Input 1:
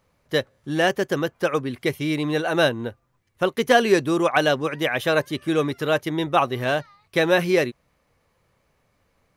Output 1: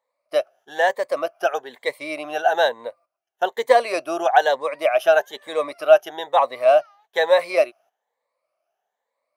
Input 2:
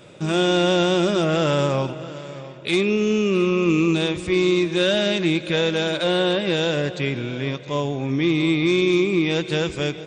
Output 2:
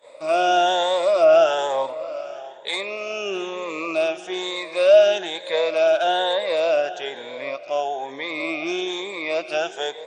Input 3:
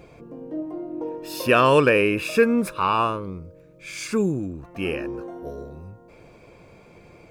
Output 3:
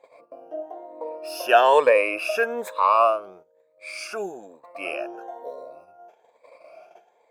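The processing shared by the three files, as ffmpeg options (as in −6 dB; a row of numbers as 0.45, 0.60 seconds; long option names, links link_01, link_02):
-af "afftfilt=real='re*pow(10,13/40*sin(2*PI*(1*log(max(b,1)*sr/1024/100)/log(2)-(1.1)*(pts-256)/sr)))':imag='im*pow(10,13/40*sin(2*PI*(1*log(max(b,1)*sr/1024/100)/log(2)-(1.1)*(pts-256)/sr)))':win_size=1024:overlap=0.75,highpass=frequency=660:width_type=q:width=4.9,agate=range=-12dB:threshold=-43dB:ratio=16:detection=peak,volume=-5dB"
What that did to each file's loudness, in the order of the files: +1.5, −1.0, +1.0 LU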